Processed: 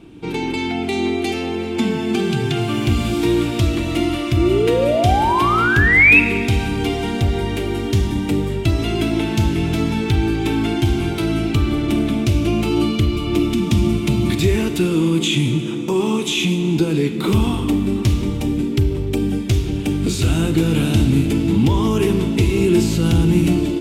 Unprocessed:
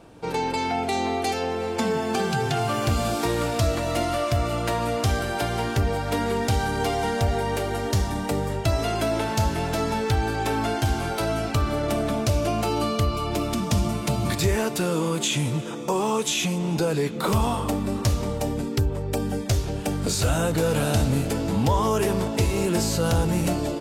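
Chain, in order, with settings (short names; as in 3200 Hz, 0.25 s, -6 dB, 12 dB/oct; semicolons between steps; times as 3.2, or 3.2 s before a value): resonant low shelf 430 Hz +7 dB, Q 3; painted sound rise, 4.37–6.2, 320–2700 Hz -16 dBFS; band shelf 2800 Hz +8 dB 1 oct; Schroeder reverb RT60 1.5 s, combs from 33 ms, DRR 10 dB; gain -1.5 dB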